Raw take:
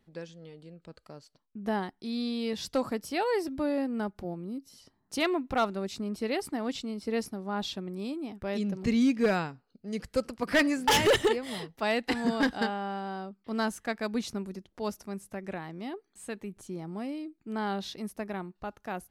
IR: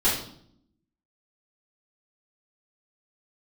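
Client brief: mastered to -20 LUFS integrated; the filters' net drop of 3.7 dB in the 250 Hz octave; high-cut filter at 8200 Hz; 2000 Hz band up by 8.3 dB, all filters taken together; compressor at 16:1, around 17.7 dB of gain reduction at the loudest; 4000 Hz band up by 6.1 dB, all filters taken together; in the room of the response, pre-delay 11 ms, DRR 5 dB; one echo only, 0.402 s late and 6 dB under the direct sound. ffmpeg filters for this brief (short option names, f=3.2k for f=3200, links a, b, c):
-filter_complex "[0:a]lowpass=8.2k,equalizer=f=250:t=o:g=-4.5,equalizer=f=2k:t=o:g=9,equalizer=f=4k:t=o:g=4.5,acompressor=threshold=-31dB:ratio=16,aecho=1:1:402:0.501,asplit=2[a][b];[1:a]atrim=start_sample=2205,adelay=11[c];[b][c]afir=irnorm=-1:irlink=0,volume=-18.5dB[d];[a][d]amix=inputs=2:normalize=0,volume=14.5dB"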